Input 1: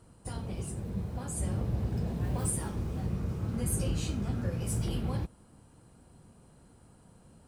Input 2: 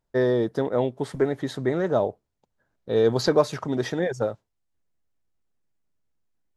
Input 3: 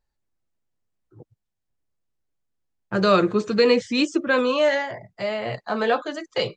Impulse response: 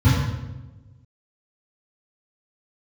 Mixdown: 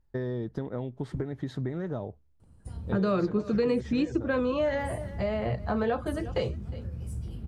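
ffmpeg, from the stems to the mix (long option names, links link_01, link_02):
-filter_complex "[0:a]acompressor=threshold=-35dB:ratio=2.5,adelay=2400,volume=-11dB[link_01];[1:a]lowpass=frequency=3400:poles=1,equalizer=frequency=550:width_type=o:width=1.6:gain=-5.5,volume=-4.5dB[link_02];[2:a]highshelf=frequency=2600:gain=-11,volume=-2dB,asplit=2[link_03][link_04];[link_04]volume=-22dB[link_05];[link_01][link_02]amix=inputs=2:normalize=0,equalizer=frequency=73:width_type=o:width=0.26:gain=12,acompressor=threshold=-34dB:ratio=6,volume=0dB[link_06];[link_05]aecho=0:1:358:1[link_07];[link_03][link_06][link_07]amix=inputs=3:normalize=0,lowshelf=frequency=280:gain=10.5,acompressor=threshold=-26dB:ratio=3"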